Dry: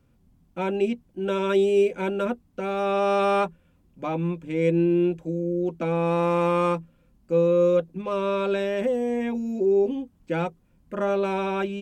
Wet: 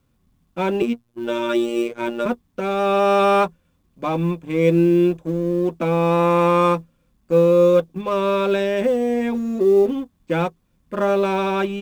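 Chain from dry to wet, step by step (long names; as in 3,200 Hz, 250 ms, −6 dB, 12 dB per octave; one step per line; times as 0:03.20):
mu-law and A-law mismatch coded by A
0:00.82–0:02.26: phases set to zero 118 Hz
hollow resonant body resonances 1,100/3,500 Hz, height 9 dB
level +6 dB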